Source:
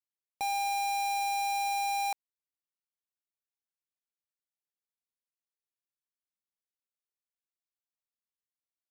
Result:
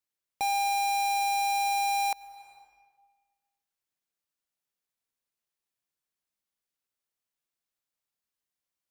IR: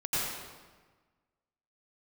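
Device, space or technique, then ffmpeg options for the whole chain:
ducked reverb: -filter_complex "[0:a]asplit=3[s0][s1][s2];[1:a]atrim=start_sample=2205[s3];[s1][s3]afir=irnorm=-1:irlink=0[s4];[s2]apad=whole_len=392739[s5];[s4][s5]sidechaincompress=threshold=0.00251:ratio=8:attack=16:release=337,volume=0.211[s6];[s0][s6]amix=inputs=2:normalize=0,volume=1.5"

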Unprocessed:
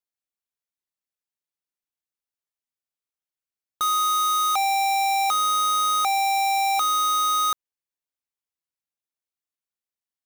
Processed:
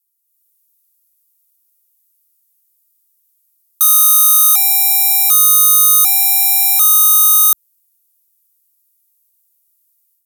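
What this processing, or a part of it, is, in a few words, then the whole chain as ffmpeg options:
FM broadcast chain: -filter_complex "[0:a]highpass=50,dynaudnorm=f=220:g=3:m=2.82,acrossover=split=550|1500[s0][s1][s2];[s0]acompressor=threshold=0.00891:ratio=4[s3];[s1]acompressor=threshold=0.1:ratio=4[s4];[s2]acompressor=threshold=0.112:ratio=4[s5];[s3][s4][s5]amix=inputs=3:normalize=0,aemphasis=mode=production:type=75fm,alimiter=limit=0.708:level=0:latency=1,asoftclip=type=hard:threshold=0.473,lowpass=f=15000:w=0.5412,lowpass=f=15000:w=1.3066,aemphasis=mode=production:type=75fm,volume=0.447"

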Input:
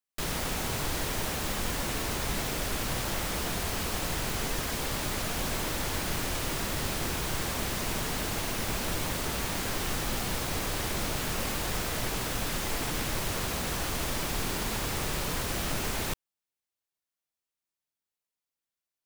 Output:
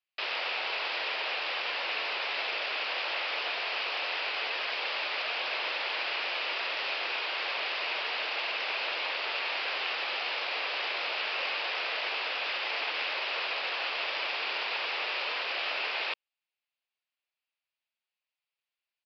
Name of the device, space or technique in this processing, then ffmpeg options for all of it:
musical greeting card: -af "aresample=11025,aresample=44100,highpass=f=510:w=0.5412,highpass=f=510:w=1.3066,equalizer=f=2600:t=o:w=0.59:g=10"

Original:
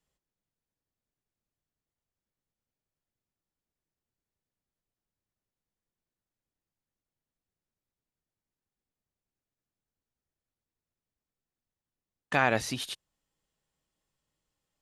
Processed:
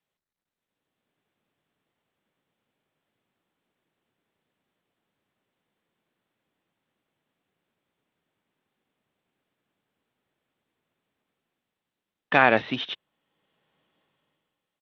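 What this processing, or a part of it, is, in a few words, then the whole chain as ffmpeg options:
Bluetooth headset: -af "highpass=180,dynaudnorm=f=180:g=9:m=6.68,aresample=8000,aresample=44100,volume=0.891" -ar 32000 -c:a sbc -b:a 64k

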